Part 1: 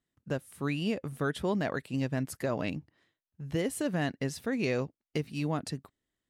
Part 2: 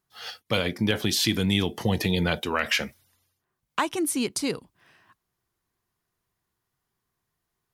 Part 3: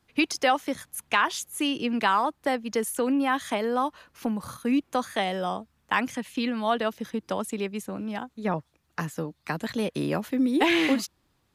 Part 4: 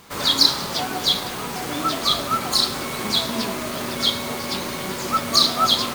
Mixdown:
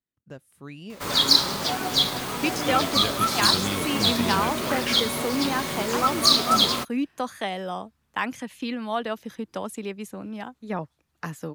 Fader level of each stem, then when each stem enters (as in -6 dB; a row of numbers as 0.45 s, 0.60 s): -9.0 dB, -6.0 dB, -2.5 dB, -1.5 dB; 0.00 s, 2.15 s, 2.25 s, 0.90 s